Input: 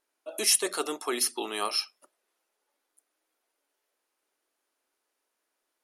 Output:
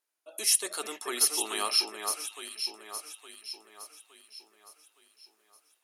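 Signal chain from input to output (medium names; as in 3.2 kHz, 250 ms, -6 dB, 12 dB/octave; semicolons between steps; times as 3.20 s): tilt EQ +2 dB/octave; level rider gain up to 10.5 dB; on a send: echo whose repeats swap between lows and highs 432 ms, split 2.2 kHz, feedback 65%, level -4 dB; on the sum: trim -8.5 dB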